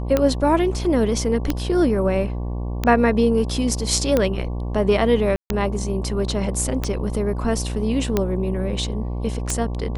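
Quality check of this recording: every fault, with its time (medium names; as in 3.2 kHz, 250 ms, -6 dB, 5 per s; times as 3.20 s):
buzz 60 Hz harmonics 19 -26 dBFS
tick 45 rpm -6 dBFS
5.36–5.50 s: dropout 141 ms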